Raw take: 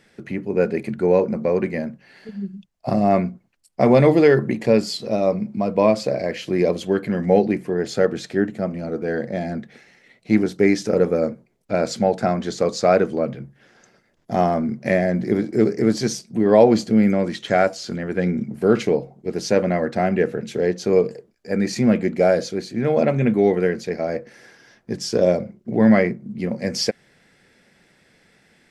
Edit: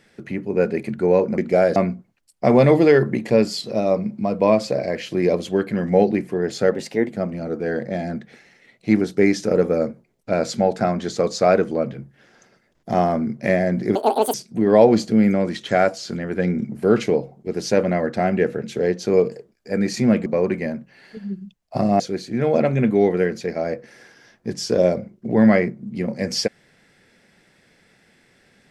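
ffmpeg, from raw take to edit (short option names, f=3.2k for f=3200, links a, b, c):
-filter_complex "[0:a]asplit=9[a][b][c][d][e][f][g][h][i];[a]atrim=end=1.382[j];[b]atrim=start=22.048:end=22.432[k];[c]atrim=start=3.118:end=8.094[l];[d]atrim=start=8.09:end=8.54,asetpts=PTS-STARTPTS,asetrate=50715,aresample=44100[m];[e]atrim=start=8.536:end=15.374[n];[f]atrim=start=15.37:end=16.13,asetpts=PTS-STARTPTS,asetrate=86436,aresample=44100[o];[g]atrim=start=16.126:end=22.052[p];[h]atrim=start=1.378:end=3.122[q];[i]atrim=start=22.428[r];[j][k]acrossfade=d=0.004:c1=hsin:c2=hsin[s];[s][l]acrossfade=d=0.004:c1=hsin:c2=hsin[t];[t][m]acrossfade=d=0.004:c1=hsin:c2=hsin[u];[u][n]acrossfade=d=0.004:c1=hsin:c2=hsin[v];[v][o]acrossfade=d=0.004:c1=hsin:c2=hsin[w];[w][p]acrossfade=d=0.004:c1=hsin:c2=hsin[x];[x][q]acrossfade=d=0.004:c1=hsin:c2=hsin[y];[y][r]acrossfade=d=0.004:c1=hsin:c2=hsin"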